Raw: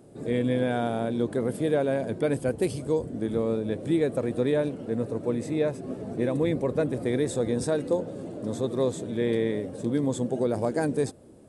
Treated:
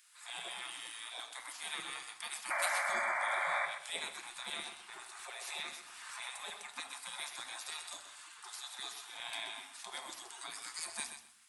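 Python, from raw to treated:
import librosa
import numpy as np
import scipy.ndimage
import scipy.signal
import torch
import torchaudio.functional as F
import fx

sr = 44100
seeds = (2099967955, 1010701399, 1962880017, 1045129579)

y = fx.spec_gate(x, sr, threshold_db=-30, keep='weak')
y = fx.low_shelf_res(y, sr, hz=420.0, db=8.0, q=1.5)
y = fx.filter_lfo_highpass(y, sr, shape='saw_down', hz=10.0, low_hz=300.0, high_hz=1700.0, q=0.81)
y = fx.dynamic_eq(y, sr, hz=1700.0, q=0.98, threshold_db=-60.0, ratio=4.0, max_db=-4)
y = fx.spec_paint(y, sr, seeds[0], shape='noise', start_s=2.5, length_s=1.16, low_hz=540.0, high_hz=2400.0, level_db=-42.0)
y = fx.echo_feedback(y, sr, ms=127, feedback_pct=18, wet_db=-9.5)
y = fx.room_shoebox(y, sr, seeds[1], volume_m3=510.0, walls='furnished', distance_m=0.87)
y = fx.pre_swell(y, sr, db_per_s=29.0, at=(4.93, 6.43))
y = y * 10.0 ** (6.5 / 20.0)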